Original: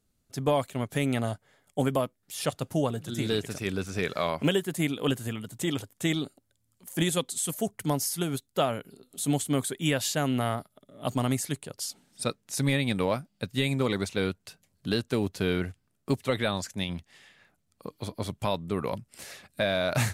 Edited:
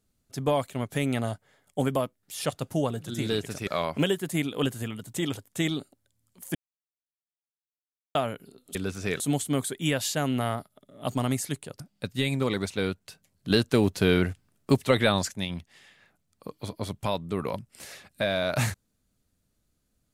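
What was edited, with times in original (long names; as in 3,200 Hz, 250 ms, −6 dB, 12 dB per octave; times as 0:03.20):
0:03.67–0:04.12: move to 0:09.20
0:07.00–0:08.60: silence
0:11.80–0:13.19: remove
0:14.89–0:16.70: clip gain +5.5 dB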